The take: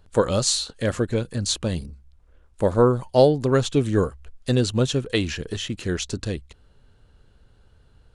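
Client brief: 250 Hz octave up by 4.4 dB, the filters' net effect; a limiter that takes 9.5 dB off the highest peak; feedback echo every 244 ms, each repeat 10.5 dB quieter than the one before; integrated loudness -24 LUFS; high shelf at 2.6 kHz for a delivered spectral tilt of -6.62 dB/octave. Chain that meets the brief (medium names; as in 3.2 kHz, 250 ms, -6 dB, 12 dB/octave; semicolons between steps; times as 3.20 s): peaking EQ 250 Hz +5.5 dB; treble shelf 2.6 kHz -7.5 dB; peak limiter -12.5 dBFS; feedback delay 244 ms, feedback 30%, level -10.5 dB; trim +0.5 dB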